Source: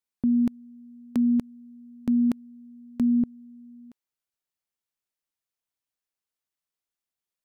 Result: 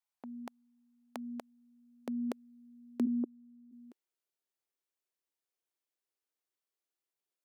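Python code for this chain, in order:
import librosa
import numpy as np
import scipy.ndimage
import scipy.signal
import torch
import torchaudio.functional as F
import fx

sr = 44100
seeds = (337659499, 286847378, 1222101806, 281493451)

y = fx.ellip_bandpass(x, sr, low_hz=260.0, high_hz=1300.0, order=3, stop_db=40, at=(3.05, 3.71), fade=0.02)
y = fx.filter_sweep_highpass(y, sr, from_hz=780.0, to_hz=360.0, start_s=0.93, end_s=3.03, q=2.2)
y = F.gain(torch.from_numpy(y), -4.0).numpy()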